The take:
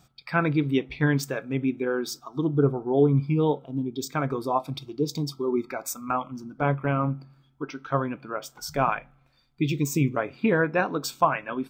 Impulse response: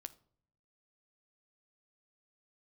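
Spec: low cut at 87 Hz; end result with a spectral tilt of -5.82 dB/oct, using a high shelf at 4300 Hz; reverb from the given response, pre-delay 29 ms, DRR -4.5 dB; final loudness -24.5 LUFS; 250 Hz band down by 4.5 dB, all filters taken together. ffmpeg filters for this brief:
-filter_complex "[0:a]highpass=87,equalizer=f=250:t=o:g=-6,highshelf=f=4.3k:g=-5.5,asplit=2[a][b];[1:a]atrim=start_sample=2205,adelay=29[c];[b][c]afir=irnorm=-1:irlink=0,volume=9.5dB[d];[a][d]amix=inputs=2:normalize=0,volume=-1.5dB"

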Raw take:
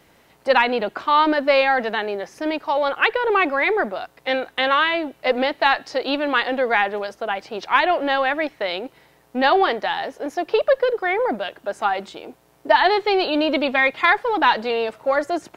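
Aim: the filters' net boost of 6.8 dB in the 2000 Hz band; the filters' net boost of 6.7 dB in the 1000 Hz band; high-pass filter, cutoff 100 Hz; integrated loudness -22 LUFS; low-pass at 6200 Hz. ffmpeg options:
-af "highpass=100,lowpass=6.2k,equalizer=f=1k:t=o:g=7,equalizer=f=2k:t=o:g=6,volume=-7dB"

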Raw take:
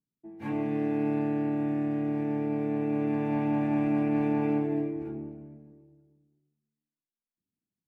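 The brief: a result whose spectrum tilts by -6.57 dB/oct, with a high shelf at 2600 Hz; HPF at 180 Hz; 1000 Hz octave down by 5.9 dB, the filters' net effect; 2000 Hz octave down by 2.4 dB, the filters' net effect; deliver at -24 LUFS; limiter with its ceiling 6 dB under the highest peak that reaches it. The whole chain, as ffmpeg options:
-af "highpass=180,equalizer=f=1k:t=o:g=-8.5,equalizer=f=2k:t=o:g=-4,highshelf=f=2.6k:g=7,volume=9dB,alimiter=limit=-16dB:level=0:latency=1"

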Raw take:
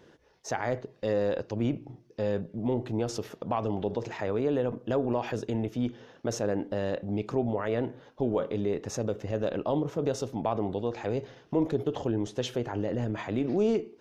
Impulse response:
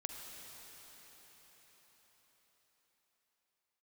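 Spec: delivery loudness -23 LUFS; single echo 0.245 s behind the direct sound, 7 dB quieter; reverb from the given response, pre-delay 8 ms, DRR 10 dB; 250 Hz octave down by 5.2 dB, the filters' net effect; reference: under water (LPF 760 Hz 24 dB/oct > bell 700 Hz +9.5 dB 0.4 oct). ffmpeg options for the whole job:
-filter_complex "[0:a]equalizer=f=250:t=o:g=-7,aecho=1:1:245:0.447,asplit=2[a][b];[1:a]atrim=start_sample=2205,adelay=8[c];[b][c]afir=irnorm=-1:irlink=0,volume=-9dB[d];[a][d]amix=inputs=2:normalize=0,lowpass=f=760:w=0.5412,lowpass=f=760:w=1.3066,equalizer=f=700:t=o:w=0.4:g=9.5,volume=7.5dB"

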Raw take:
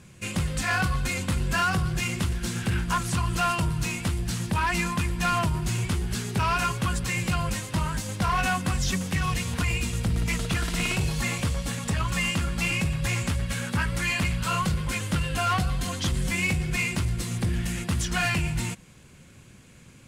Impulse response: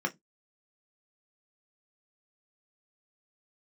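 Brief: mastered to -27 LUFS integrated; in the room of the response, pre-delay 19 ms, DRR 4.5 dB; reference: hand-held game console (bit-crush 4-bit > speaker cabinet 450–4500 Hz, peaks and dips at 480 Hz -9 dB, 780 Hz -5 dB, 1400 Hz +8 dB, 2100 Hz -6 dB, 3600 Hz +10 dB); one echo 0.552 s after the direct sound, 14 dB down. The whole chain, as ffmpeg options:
-filter_complex "[0:a]aecho=1:1:552:0.2,asplit=2[a][b];[1:a]atrim=start_sample=2205,adelay=19[c];[b][c]afir=irnorm=-1:irlink=0,volume=-11.5dB[d];[a][d]amix=inputs=2:normalize=0,acrusher=bits=3:mix=0:aa=0.000001,highpass=450,equalizer=f=480:t=q:w=4:g=-9,equalizer=f=780:t=q:w=4:g=-5,equalizer=f=1.4k:t=q:w=4:g=8,equalizer=f=2.1k:t=q:w=4:g=-6,equalizer=f=3.6k:t=q:w=4:g=10,lowpass=f=4.5k:w=0.5412,lowpass=f=4.5k:w=1.3066,volume=-3dB"

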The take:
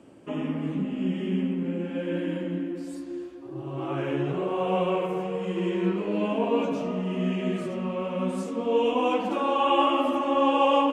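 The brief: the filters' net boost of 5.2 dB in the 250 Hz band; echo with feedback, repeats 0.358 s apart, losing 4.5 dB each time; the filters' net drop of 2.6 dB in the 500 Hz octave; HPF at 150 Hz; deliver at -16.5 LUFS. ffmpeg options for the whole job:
-af "highpass=150,equalizer=f=250:t=o:g=9,equalizer=f=500:t=o:g=-6,aecho=1:1:358|716|1074|1432|1790|2148|2506|2864|3222:0.596|0.357|0.214|0.129|0.0772|0.0463|0.0278|0.0167|0.01,volume=6.5dB"

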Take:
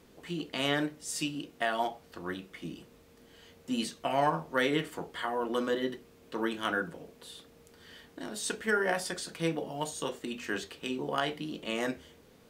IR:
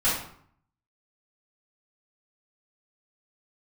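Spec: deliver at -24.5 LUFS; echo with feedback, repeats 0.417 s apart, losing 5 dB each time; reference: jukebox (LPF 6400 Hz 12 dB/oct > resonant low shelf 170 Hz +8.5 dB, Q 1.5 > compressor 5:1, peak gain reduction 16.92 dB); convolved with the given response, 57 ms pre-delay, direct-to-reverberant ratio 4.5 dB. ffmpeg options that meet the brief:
-filter_complex "[0:a]aecho=1:1:417|834|1251|1668|2085|2502|2919:0.562|0.315|0.176|0.0988|0.0553|0.031|0.0173,asplit=2[a][b];[1:a]atrim=start_sample=2205,adelay=57[c];[b][c]afir=irnorm=-1:irlink=0,volume=-17.5dB[d];[a][d]amix=inputs=2:normalize=0,lowpass=6.4k,lowshelf=f=170:t=q:w=1.5:g=8.5,acompressor=threshold=-40dB:ratio=5,volume=18dB"

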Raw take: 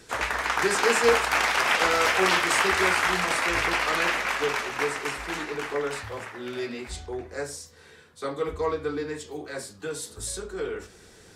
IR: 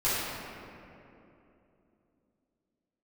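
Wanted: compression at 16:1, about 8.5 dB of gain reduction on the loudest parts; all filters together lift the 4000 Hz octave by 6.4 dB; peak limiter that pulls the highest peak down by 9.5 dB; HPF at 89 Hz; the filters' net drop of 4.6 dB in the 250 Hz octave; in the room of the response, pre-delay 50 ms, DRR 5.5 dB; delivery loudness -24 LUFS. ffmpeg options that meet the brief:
-filter_complex "[0:a]highpass=89,equalizer=f=250:t=o:g=-7.5,equalizer=f=4k:t=o:g=8.5,acompressor=threshold=-23dB:ratio=16,alimiter=limit=-19dB:level=0:latency=1,asplit=2[a][b];[1:a]atrim=start_sample=2205,adelay=50[c];[b][c]afir=irnorm=-1:irlink=0,volume=-18dB[d];[a][d]amix=inputs=2:normalize=0,volume=5dB"

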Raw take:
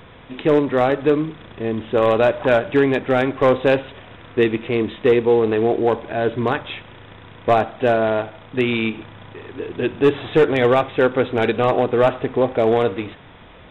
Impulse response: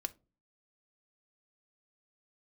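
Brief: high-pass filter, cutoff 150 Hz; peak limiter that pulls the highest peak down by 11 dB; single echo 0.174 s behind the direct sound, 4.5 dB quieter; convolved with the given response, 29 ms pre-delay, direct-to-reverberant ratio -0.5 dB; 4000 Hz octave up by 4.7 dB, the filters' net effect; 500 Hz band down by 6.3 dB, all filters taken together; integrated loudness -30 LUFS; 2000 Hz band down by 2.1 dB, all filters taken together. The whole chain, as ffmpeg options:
-filter_complex "[0:a]highpass=150,equalizer=f=500:t=o:g=-7.5,equalizer=f=2k:t=o:g=-4.5,equalizer=f=4k:t=o:g=8,alimiter=limit=-17.5dB:level=0:latency=1,aecho=1:1:174:0.596,asplit=2[a][b];[1:a]atrim=start_sample=2205,adelay=29[c];[b][c]afir=irnorm=-1:irlink=0,volume=1.5dB[d];[a][d]amix=inputs=2:normalize=0,volume=-5.5dB"

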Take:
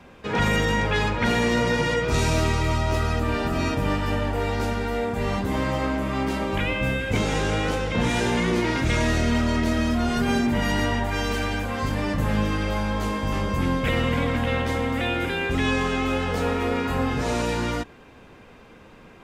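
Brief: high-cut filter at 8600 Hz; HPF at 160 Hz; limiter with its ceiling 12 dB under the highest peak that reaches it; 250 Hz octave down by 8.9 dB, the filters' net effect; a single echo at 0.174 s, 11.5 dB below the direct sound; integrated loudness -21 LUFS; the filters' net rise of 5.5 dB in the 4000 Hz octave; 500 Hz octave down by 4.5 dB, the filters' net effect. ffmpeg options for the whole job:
-af "highpass=160,lowpass=8.6k,equalizer=f=250:t=o:g=-9,equalizer=f=500:t=o:g=-3,equalizer=f=4k:t=o:g=7.5,alimiter=limit=-24dB:level=0:latency=1,aecho=1:1:174:0.266,volume=10.5dB"

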